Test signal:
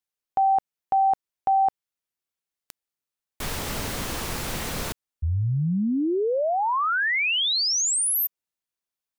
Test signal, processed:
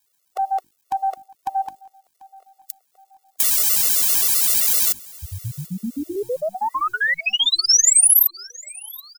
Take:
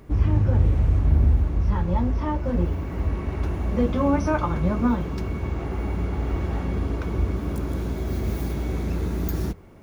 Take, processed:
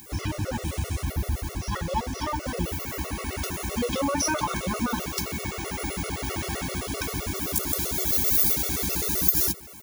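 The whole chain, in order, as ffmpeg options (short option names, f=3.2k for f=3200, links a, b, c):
-filter_complex "[0:a]highpass=f=81:p=1,bandreject=f=50:t=h:w=6,bandreject=f=100:t=h:w=6,bandreject=f=150:t=h:w=6,bandreject=f=200:t=h:w=6,bandreject=f=250:t=h:w=6,bandreject=f=300:t=h:w=6,bandreject=f=350:t=h:w=6,crystalizer=i=8:c=0,acompressor=threshold=-17dB:ratio=10:attack=3.5:release=119:knee=6:detection=peak,acrusher=bits=9:mix=0:aa=0.000001,aeval=exprs='2*(cos(1*acos(clip(val(0)/2,-1,1)))-cos(1*PI/2))+0.0631*(cos(4*acos(clip(val(0)/2,-1,1)))-cos(4*PI/2))+0.0126*(cos(8*acos(clip(val(0)/2,-1,1)))-cos(8*PI/2))':c=same,volume=6dB,asoftclip=hard,volume=-6dB,bass=f=250:g=-3,treble=f=4k:g=6,asplit=2[a][b];[b]aecho=0:1:741|1482|2223:0.0708|0.0319|0.0143[c];[a][c]amix=inputs=2:normalize=0,afftfilt=real='re*gt(sin(2*PI*7.7*pts/sr)*(1-2*mod(floor(b*sr/1024/370),2)),0)':imag='im*gt(sin(2*PI*7.7*pts/sr)*(1-2*mod(floor(b*sr/1024/370),2)),0)':win_size=1024:overlap=0.75,volume=1.5dB"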